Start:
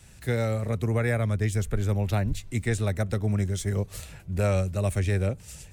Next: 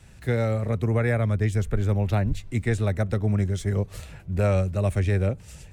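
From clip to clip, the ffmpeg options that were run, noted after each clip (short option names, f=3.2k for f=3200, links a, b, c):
-af "highshelf=f=4.3k:g=-10,volume=2.5dB"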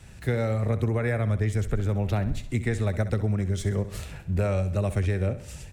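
-af "acompressor=threshold=-24dB:ratio=6,aecho=1:1:65|130|195|260|325:0.211|0.104|0.0507|0.0249|0.0122,volume=2.5dB"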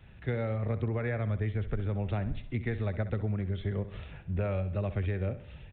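-af "aresample=8000,aresample=44100,volume=-6dB"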